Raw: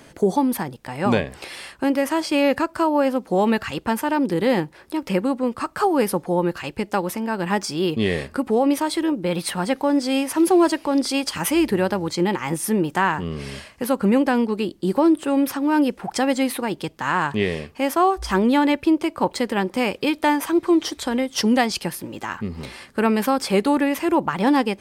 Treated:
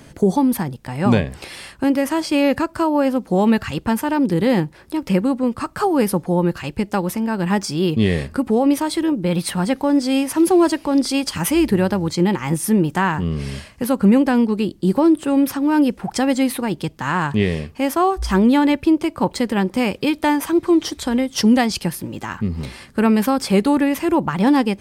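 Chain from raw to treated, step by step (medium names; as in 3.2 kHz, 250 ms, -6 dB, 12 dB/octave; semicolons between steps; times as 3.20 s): tone controls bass +9 dB, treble +2 dB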